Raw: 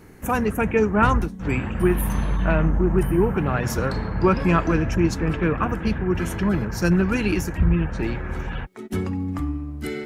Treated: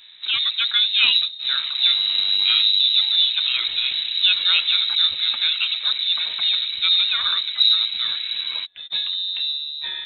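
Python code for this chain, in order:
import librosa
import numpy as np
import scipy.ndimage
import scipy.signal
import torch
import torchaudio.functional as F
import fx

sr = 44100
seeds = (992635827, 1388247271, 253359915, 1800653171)

y = fx.freq_invert(x, sr, carrier_hz=3900)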